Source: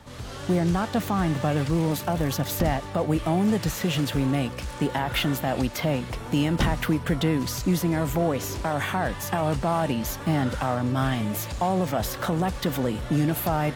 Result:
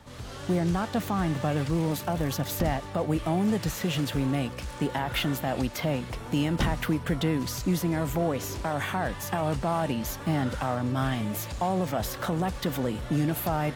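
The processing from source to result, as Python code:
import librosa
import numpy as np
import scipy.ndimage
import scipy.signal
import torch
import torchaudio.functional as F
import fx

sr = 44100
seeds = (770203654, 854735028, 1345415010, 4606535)

y = fx.dmg_crackle(x, sr, seeds[0], per_s=20.0, level_db=-41.0)
y = y * 10.0 ** (-3.0 / 20.0)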